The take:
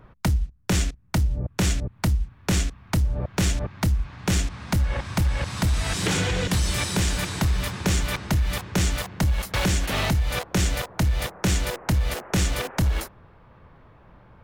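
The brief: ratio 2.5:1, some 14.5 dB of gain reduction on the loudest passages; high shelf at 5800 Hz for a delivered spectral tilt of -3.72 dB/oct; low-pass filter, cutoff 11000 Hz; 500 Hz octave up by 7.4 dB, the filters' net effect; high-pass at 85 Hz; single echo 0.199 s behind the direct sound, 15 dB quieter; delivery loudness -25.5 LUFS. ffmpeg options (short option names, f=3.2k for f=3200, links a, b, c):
-af "highpass=85,lowpass=11k,equalizer=f=500:t=o:g=9,highshelf=f=5.8k:g=7.5,acompressor=threshold=-40dB:ratio=2.5,aecho=1:1:199:0.178,volume=12dB"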